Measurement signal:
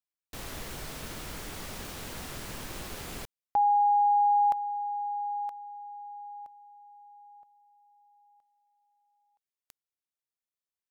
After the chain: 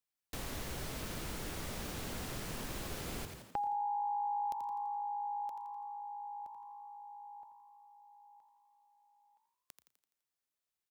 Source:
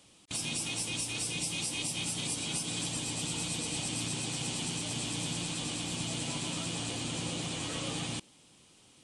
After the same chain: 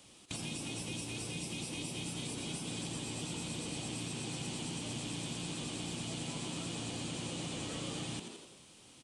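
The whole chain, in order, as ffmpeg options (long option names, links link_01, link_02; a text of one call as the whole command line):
ffmpeg -i in.wav -filter_complex "[0:a]asplit=2[link_01][link_02];[link_02]asplit=6[link_03][link_04][link_05][link_06][link_07][link_08];[link_03]adelay=84,afreqshift=55,volume=-9dB[link_09];[link_04]adelay=168,afreqshift=110,volume=-15dB[link_10];[link_05]adelay=252,afreqshift=165,volume=-21dB[link_11];[link_06]adelay=336,afreqshift=220,volume=-27.1dB[link_12];[link_07]adelay=420,afreqshift=275,volume=-33.1dB[link_13];[link_08]adelay=504,afreqshift=330,volume=-39.1dB[link_14];[link_09][link_10][link_11][link_12][link_13][link_14]amix=inputs=6:normalize=0[link_15];[link_01][link_15]amix=inputs=2:normalize=0,acrossover=split=630|3300[link_16][link_17][link_18];[link_16]acompressor=threshold=-41dB:ratio=4[link_19];[link_17]acompressor=threshold=-50dB:ratio=4[link_20];[link_18]acompressor=threshold=-48dB:ratio=4[link_21];[link_19][link_20][link_21]amix=inputs=3:normalize=0,asplit=2[link_22][link_23];[link_23]aecho=0:1:118:0.0841[link_24];[link_22][link_24]amix=inputs=2:normalize=0,volume=1.5dB" out.wav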